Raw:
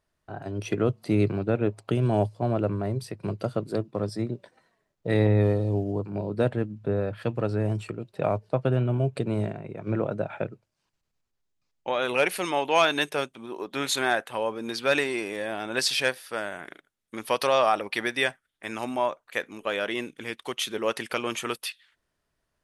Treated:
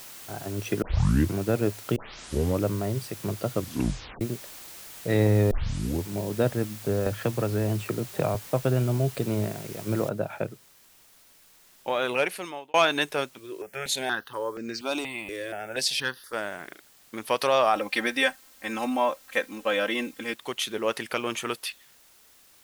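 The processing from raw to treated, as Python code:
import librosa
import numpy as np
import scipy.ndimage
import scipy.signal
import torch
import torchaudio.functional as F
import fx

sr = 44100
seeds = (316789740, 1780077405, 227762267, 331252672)

y = fx.band_squash(x, sr, depth_pct=100, at=(7.06, 8.35))
y = fx.noise_floor_step(y, sr, seeds[0], at_s=10.09, before_db=-44, after_db=-57, tilt_db=0.0)
y = fx.phaser_held(y, sr, hz=4.2, low_hz=220.0, high_hz=3400.0, at=(13.38, 16.33))
y = fx.comb(y, sr, ms=3.8, depth=0.9, at=(17.75, 20.34))
y = fx.edit(y, sr, fx.tape_start(start_s=0.82, length_s=0.53),
    fx.tape_start(start_s=1.96, length_s=0.69),
    fx.tape_stop(start_s=3.54, length_s=0.67),
    fx.tape_start(start_s=5.51, length_s=0.57),
    fx.fade_out_span(start_s=12.07, length_s=0.67), tone=tone)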